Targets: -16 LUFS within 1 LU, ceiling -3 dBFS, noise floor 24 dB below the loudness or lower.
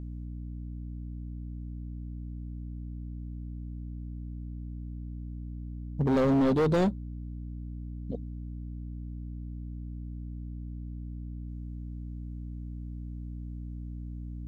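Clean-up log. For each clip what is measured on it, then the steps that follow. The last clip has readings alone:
clipped samples 1.1%; clipping level -21.0 dBFS; hum 60 Hz; highest harmonic 300 Hz; hum level -36 dBFS; loudness -35.0 LUFS; peak level -21.0 dBFS; loudness target -16.0 LUFS
-> clip repair -21 dBFS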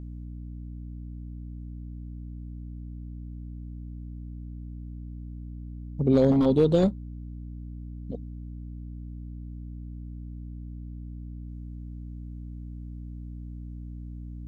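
clipped samples 0.0%; hum 60 Hz; highest harmonic 300 Hz; hum level -36 dBFS
-> hum notches 60/120/180/240/300 Hz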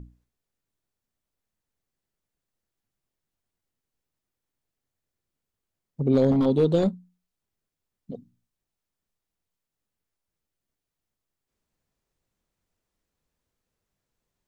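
hum not found; loudness -22.5 LUFS; peak level -11.5 dBFS; loudness target -16.0 LUFS
-> trim +6.5 dB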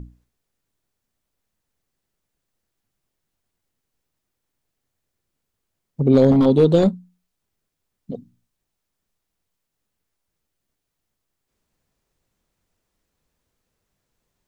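loudness -16.0 LUFS; peak level -5.0 dBFS; noise floor -80 dBFS

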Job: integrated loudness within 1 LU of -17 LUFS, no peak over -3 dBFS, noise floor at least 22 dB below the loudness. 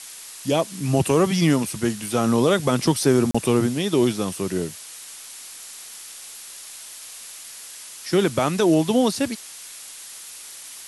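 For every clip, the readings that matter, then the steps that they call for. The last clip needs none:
dropouts 1; longest dropout 35 ms; noise floor -40 dBFS; noise floor target -43 dBFS; loudness -21.0 LUFS; peak level -6.0 dBFS; loudness target -17.0 LUFS
-> interpolate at 3.31 s, 35 ms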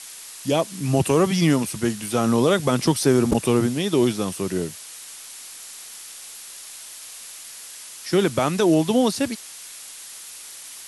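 dropouts 0; noise floor -40 dBFS; noise floor target -43 dBFS
-> noise reduction 6 dB, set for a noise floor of -40 dBFS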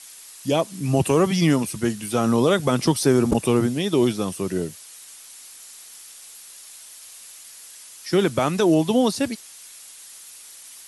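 noise floor -44 dBFS; loudness -21.5 LUFS; peak level -6.0 dBFS; loudness target -17.0 LUFS
-> trim +4.5 dB; peak limiter -3 dBFS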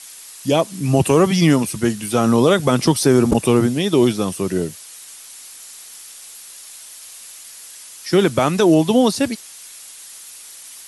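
loudness -17.0 LUFS; peak level -3.0 dBFS; noise floor -39 dBFS

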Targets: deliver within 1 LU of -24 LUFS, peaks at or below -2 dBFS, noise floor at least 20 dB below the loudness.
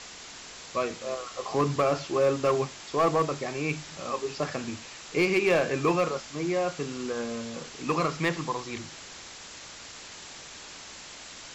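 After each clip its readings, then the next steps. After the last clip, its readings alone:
clipped samples 0.4%; clipping level -17.0 dBFS; noise floor -45 dBFS; noise floor target -49 dBFS; loudness -28.5 LUFS; peak level -17.0 dBFS; loudness target -24.0 LUFS
-> clip repair -17 dBFS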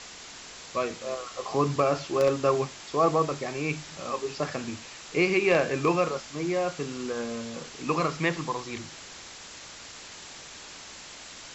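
clipped samples 0.0%; noise floor -45 dBFS; noise floor target -48 dBFS
-> noise reduction 6 dB, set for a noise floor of -45 dBFS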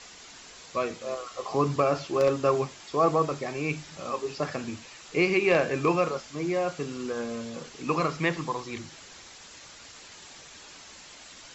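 noise floor -48 dBFS; loudness -28.0 LUFS; peak level -8.5 dBFS; loudness target -24.0 LUFS
-> trim +4 dB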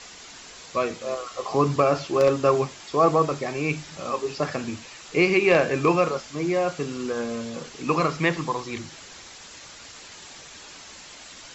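loudness -24.0 LUFS; peak level -4.5 dBFS; noise floor -44 dBFS

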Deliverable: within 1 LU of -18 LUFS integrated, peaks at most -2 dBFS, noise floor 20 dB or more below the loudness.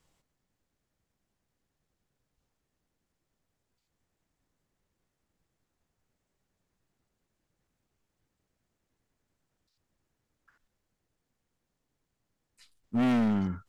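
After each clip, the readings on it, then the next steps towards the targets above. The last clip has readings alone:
clipped samples 1.0%; clipping level -23.0 dBFS; loudness -27.5 LUFS; peak level -23.0 dBFS; loudness target -18.0 LUFS
-> clip repair -23 dBFS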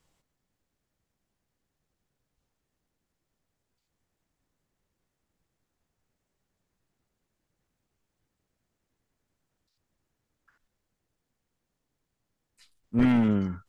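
clipped samples 0.0%; loudness -24.5 LUFS; peak level -14.0 dBFS; loudness target -18.0 LUFS
-> trim +6.5 dB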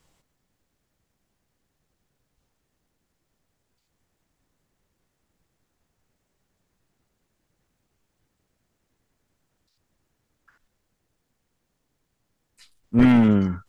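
loudness -18.0 LUFS; peak level -7.5 dBFS; noise floor -77 dBFS

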